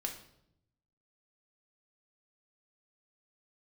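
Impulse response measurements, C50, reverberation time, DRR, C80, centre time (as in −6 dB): 9.0 dB, 0.75 s, 2.0 dB, 12.0 dB, 18 ms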